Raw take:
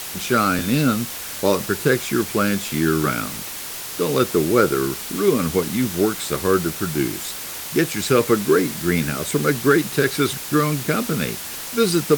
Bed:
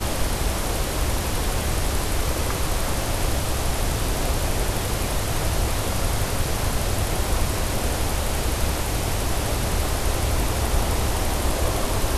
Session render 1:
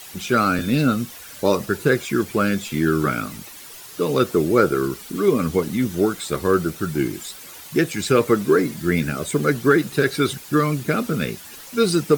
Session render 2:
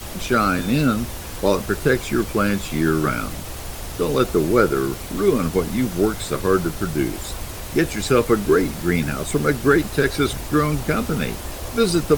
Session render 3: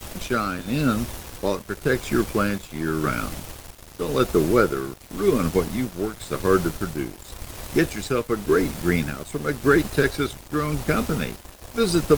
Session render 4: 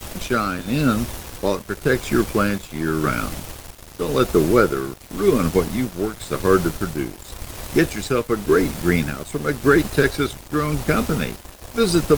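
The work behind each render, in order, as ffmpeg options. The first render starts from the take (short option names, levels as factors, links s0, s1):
-af "afftdn=nr=11:nf=-32"
-filter_complex "[1:a]volume=0.355[s0];[0:a][s0]amix=inputs=2:normalize=0"
-af "tremolo=f=0.91:d=0.54,aeval=exprs='sgn(val(0))*max(abs(val(0))-0.0126,0)':c=same"
-af "volume=1.41,alimiter=limit=0.708:level=0:latency=1"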